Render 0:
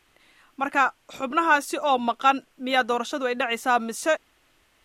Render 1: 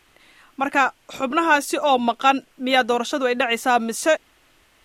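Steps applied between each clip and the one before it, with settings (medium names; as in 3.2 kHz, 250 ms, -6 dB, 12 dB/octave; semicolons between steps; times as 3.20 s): dynamic bell 1.2 kHz, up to -6 dB, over -32 dBFS, Q 1.9; trim +5.5 dB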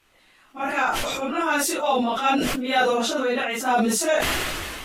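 phase randomisation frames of 100 ms; decay stretcher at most 25 dB/s; trim -5 dB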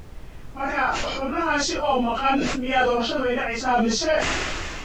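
knee-point frequency compression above 2.2 kHz 1.5:1; added noise brown -37 dBFS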